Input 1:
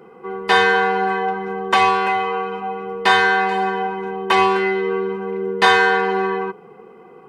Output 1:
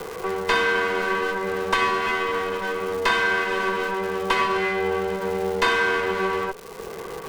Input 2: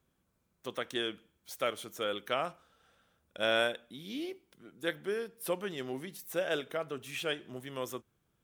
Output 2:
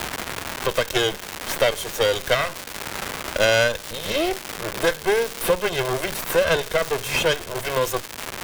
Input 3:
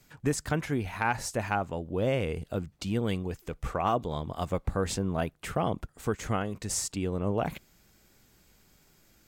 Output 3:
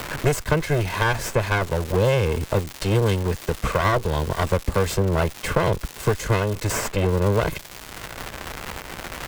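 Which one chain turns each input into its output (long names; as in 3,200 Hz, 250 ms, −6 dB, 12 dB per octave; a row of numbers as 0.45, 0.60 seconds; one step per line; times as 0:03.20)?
lower of the sound and its delayed copy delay 1.9 ms
surface crackle 350 per second −36 dBFS
multiband upward and downward compressor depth 70%
loudness normalisation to −23 LKFS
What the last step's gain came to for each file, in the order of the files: −4.0, +16.0, +9.5 decibels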